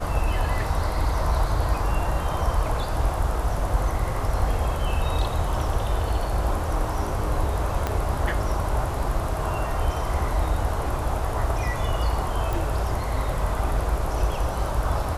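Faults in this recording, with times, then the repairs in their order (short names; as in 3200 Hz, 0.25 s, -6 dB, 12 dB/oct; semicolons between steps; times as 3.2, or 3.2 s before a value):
7.87 pop -11 dBFS
12.53 pop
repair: de-click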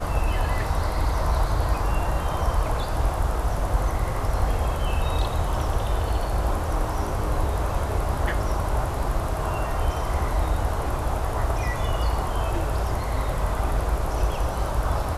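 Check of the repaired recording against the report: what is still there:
7.87 pop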